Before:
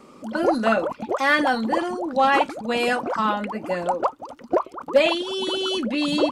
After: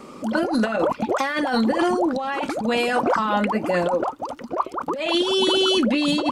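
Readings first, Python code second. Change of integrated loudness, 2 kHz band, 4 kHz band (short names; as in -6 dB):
+1.0 dB, -2.5 dB, +4.0 dB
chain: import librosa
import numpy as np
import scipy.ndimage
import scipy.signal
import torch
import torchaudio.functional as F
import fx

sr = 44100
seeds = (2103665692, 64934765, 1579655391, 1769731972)

y = fx.over_compress(x, sr, threshold_db=-25.0, ratio=-1.0)
y = y * librosa.db_to_amplitude(4.0)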